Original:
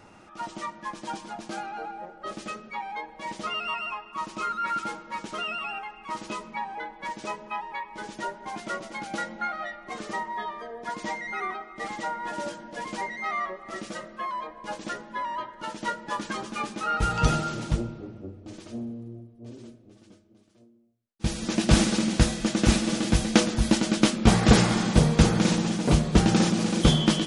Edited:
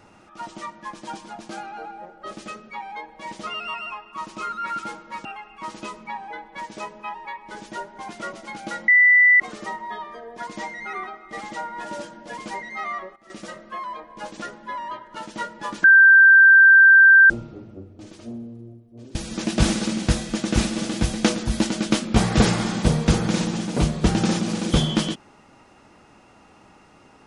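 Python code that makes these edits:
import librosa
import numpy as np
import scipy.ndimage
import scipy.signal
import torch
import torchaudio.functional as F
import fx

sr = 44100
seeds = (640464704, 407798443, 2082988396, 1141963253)

y = fx.edit(x, sr, fx.cut(start_s=5.25, length_s=0.47),
    fx.bleep(start_s=9.35, length_s=0.52, hz=1980.0, db=-10.5),
    fx.fade_down_up(start_s=13.32, length_s=0.76, db=-15.5, fade_s=0.31, curve='log'),
    fx.bleep(start_s=16.31, length_s=1.46, hz=1570.0, db=-7.5),
    fx.cut(start_s=19.62, length_s=1.64), tone=tone)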